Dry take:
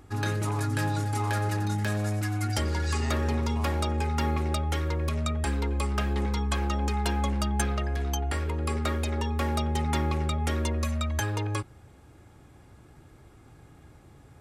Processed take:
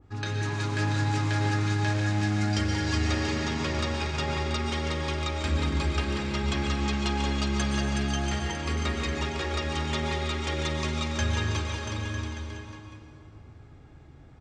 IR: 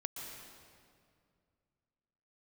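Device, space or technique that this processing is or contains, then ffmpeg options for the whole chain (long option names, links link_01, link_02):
swimming-pool hall: -filter_complex "[0:a]lowpass=frequency=6800:width=0.5412,lowpass=frequency=6800:width=1.3066[link_01];[1:a]atrim=start_sample=2205[link_02];[link_01][link_02]afir=irnorm=-1:irlink=0,equalizer=frequency=780:width=0.32:gain=-3,highshelf=frequency=5500:gain=-8,aecho=1:1:370|684.5|951.8|1179|1372:0.631|0.398|0.251|0.158|0.1,adynamicequalizer=threshold=0.00251:dfrequency=1700:dqfactor=0.7:tfrequency=1700:tqfactor=0.7:attack=5:release=100:ratio=0.375:range=4:mode=boostabove:tftype=highshelf"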